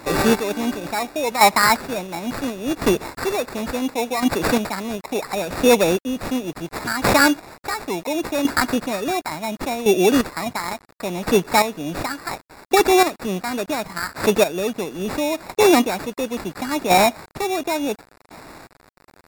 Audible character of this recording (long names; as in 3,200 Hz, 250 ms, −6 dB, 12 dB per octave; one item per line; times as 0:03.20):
aliases and images of a low sample rate 3,100 Hz, jitter 0%
chopped level 0.71 Hz, depth 65%, duty 25%
a quantiser's noise floor 8 bits, dither none
MP3